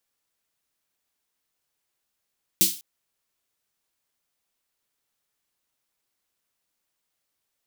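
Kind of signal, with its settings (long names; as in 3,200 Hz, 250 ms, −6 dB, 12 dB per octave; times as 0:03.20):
synth snare length 0.20 s, tones 190 Hz, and 330 Hz, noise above 3,000 Hz, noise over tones 10.5 dB, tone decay 0.22 s, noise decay 0.37 s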